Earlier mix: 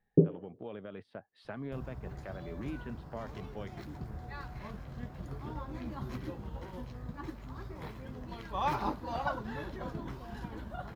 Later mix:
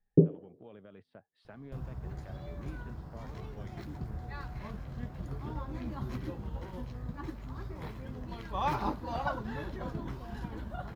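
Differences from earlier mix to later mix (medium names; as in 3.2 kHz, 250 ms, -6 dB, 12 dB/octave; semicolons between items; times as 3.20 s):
speech -9.0 dB; master: add bass shelf 190 Hz +4 dB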